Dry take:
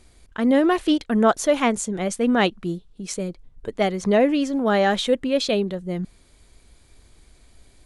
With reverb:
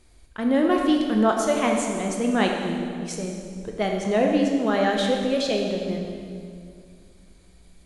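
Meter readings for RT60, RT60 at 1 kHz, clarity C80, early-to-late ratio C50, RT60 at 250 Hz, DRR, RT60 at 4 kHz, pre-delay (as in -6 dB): 2.3 s, 2.1 s, 4.0 dB, 2.5 dB, 2.9 s, 1.0 dB, 1.9 s, 15 ms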